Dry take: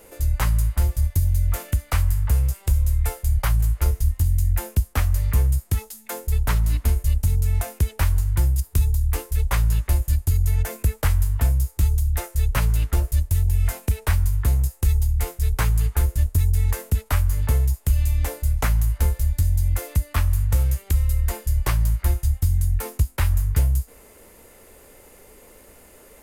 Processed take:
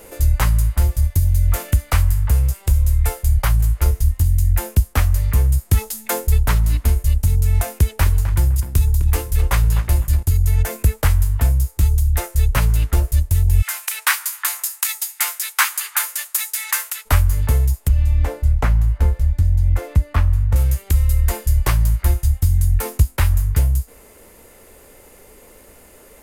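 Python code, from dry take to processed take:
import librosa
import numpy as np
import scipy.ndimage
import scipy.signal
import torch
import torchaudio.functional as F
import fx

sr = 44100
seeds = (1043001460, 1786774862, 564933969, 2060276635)

y = fx.echo_tape(x, sr, ms=256, feedback_pct=27, wet_db=-7.0, lp_hz=2400.0, drive_db=14.0, wow_cents=22, at=(7.76, 10.23))
y = fx.highpass(y, sr, hz=1100.0, slope=24, at=(13.61, 17.05), fade=0.02)
y = fx.lowpass(y, sr, hz=1600.0, slope=6, at=(17.88, 20.56))
y = fx.rider(y, sr, range_db=10, speed_s=0.5)
y = y * librosa.db_to_amplitude(4.5)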